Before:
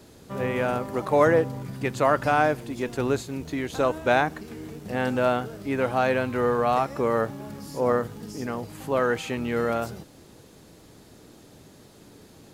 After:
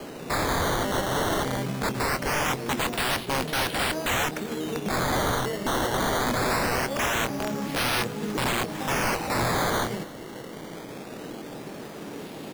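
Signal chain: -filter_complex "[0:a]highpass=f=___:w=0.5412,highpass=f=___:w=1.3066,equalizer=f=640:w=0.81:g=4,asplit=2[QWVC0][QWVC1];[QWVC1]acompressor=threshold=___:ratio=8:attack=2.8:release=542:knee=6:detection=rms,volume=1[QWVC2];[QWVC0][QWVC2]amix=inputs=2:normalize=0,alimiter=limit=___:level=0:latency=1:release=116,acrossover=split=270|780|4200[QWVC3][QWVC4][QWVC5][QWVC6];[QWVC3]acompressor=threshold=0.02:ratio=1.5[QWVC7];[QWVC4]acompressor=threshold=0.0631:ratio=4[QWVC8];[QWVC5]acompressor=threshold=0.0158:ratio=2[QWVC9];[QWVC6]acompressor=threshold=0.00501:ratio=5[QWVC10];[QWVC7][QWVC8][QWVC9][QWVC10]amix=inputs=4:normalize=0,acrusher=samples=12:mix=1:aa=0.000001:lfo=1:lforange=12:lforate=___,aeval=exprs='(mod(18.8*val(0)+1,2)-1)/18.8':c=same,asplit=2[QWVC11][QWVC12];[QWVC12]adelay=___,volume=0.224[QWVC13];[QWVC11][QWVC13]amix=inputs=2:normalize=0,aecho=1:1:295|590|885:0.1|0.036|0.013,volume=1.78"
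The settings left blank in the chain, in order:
140, 140, 0.0224, 0.266, 0.22, 24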